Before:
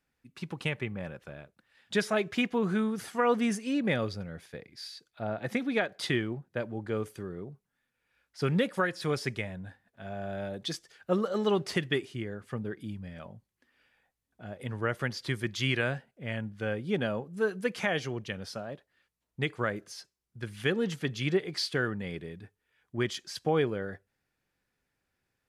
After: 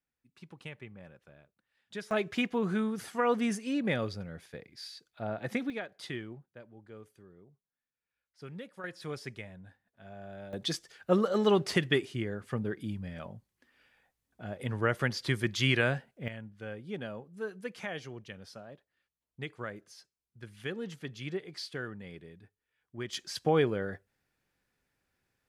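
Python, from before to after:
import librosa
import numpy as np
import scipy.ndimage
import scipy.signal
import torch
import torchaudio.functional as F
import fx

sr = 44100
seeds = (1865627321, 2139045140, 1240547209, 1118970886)

y = fx.gain(x, sr, db=fx.steps((0.0, -12.5), (2.11, -2.0), (5.7, -10.0), (6.46, -17.0), (8.84, -9.0), (10.53, 2.0), (16.28, -9.0), (23.13, 1.0)))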